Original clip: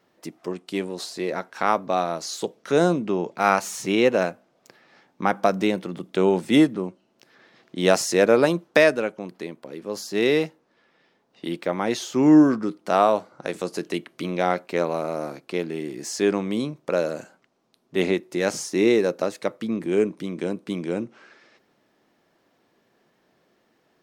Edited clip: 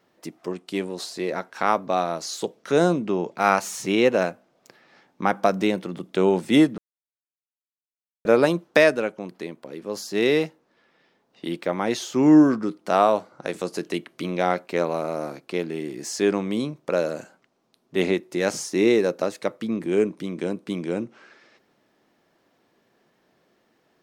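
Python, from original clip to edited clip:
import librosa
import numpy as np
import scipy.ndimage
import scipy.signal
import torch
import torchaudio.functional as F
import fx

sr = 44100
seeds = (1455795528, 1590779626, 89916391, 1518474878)

y = fx.edit(x, sr, fx.silence(start_s=6.78, length_s=1.47), tone=tone)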